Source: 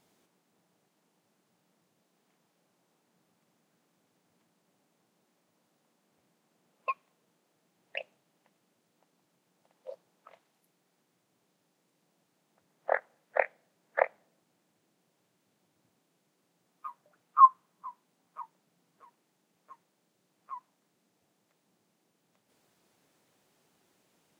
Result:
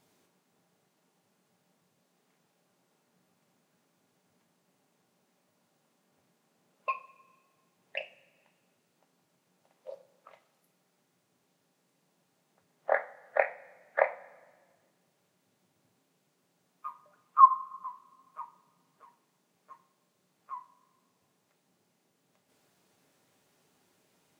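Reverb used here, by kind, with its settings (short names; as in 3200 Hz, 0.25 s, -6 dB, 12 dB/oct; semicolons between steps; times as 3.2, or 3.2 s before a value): two-slope reverb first 0.32 s, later 1.6 s, from -19 dB, DRR 5.5 dB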